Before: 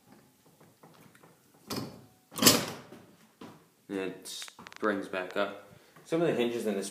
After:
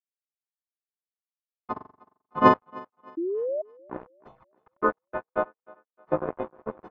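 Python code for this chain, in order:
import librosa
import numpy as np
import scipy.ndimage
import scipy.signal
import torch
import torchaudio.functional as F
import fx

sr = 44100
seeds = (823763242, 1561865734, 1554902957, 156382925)

p1 = fx.freq_snap(x, sr, grid_st=3)
p2 = fx.hum_notches(p1, sr, base_hz=60, count=9)
p3 = fx.transient(p2, sr, attack_db=12, sustain_db=-9)
p4 = fx.quant_dither(p3, sr, seeds[0], bits=6, dither='none')
p5 = p3 + (p4 * librosa.db_to_amplitude(-7.0))
p6 = np.sign(p5) * np.maximum(np.abs(p5) - 10.0 ** (-23.5 / 20.0), 0.0)
p7 = fx.env_flanger(p6, sr, rest_ms=5.5, full_db=-25.0, at=(4.06, 4.52))
p8 = fx.ladder_lowpass(p7, sr, hz=1200.0, resonance_pct=45)
p9 = fx.room_flutter(p8, sr, wall_m=7.4, rt60_s=0.46, at=(1.72, 2.54))
p10 = fx.spec_paint(p9, sr, seeds[1], shape='rise', start_s=3.17, length_s=0.45, low_hz=320.0, high_hz=640.0, level_db=-32.0)
p11 = p10 + fx.echo_thinned(p10, sr, ms=308, feedback_pct=38, hz=170.0, wet_db=-23.0, dry=0)
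y = p11 * librosa.db_to_amplitude(4.0)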